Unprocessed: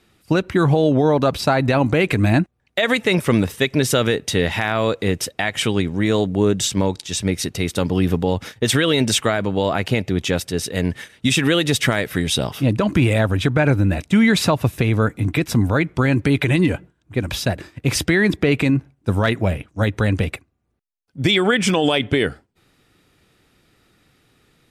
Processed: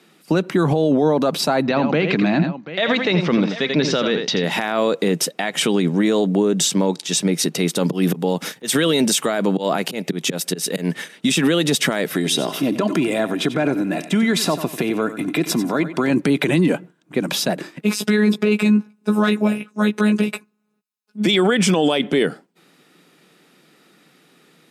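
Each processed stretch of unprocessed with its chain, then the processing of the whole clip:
1.62–4.44 steep low-pass 5400 Hz + bell 380 Hz -4 dB 2.1 oct + tapped delay 84/737 ms -9/-18.5 dB
7.83–10.94 high shelf 7300 Hz +8.5 dB + auto swell 0.193 s
12.15–16.1 comb 2.9 ms, depth 37% + compressor 3:1, threshold -21 dBFS + feedback echo 92 ms, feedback 30%, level -13.5 dB
17.81–21.26 robotiser 211 Hz + doubler 15 ms -4.5 dB
whole clip: elliptic high-pass 160 Hz, stop band 50 dB; dynamic EQ 2100 Hz, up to -4 dB, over -36 dBFS, Q 1.1; maximiser +14 dB; gain -7.5 dB

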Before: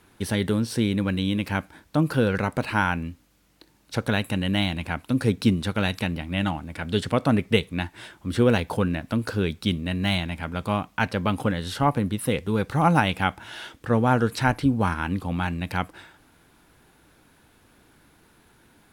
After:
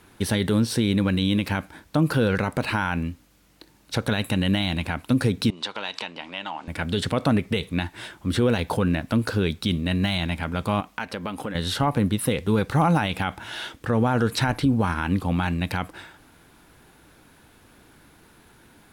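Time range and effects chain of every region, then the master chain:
5.5–6.68 compressor 5:1, threshold -30 dBFS + speaker cabinet 430–7500 Hz, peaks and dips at 950 Hz +8 dB, 3000 Hz +5 dB, 4700 Hz +4 dB
10.8–11.55 bell 110 Hz -12.5 dB 1 oct + compressor 2.5:1, threshold -34 dBFS
whole clip: dynamic EQ 3800 Hz, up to +4 dB, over -47 dBFS, Q 4.9; limiter -15.5 dBFS; gain +4 dB

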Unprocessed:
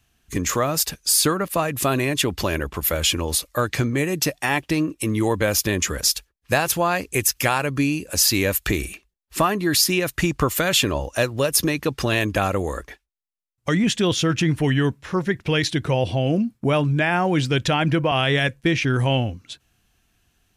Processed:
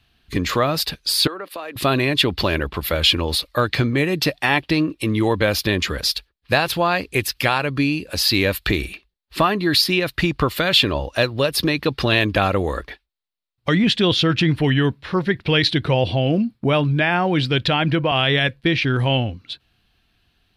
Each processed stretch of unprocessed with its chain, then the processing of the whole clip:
1.27–1.76 HPF 290 Hz 24 dB/oct + compressor, threshold -29 dBFS + three-band expander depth 40%
whole clip: vocal rider within 3 dB 2 s; resonant high shelf 5300 Hz -8 dB, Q 3; gain +1.5 dB

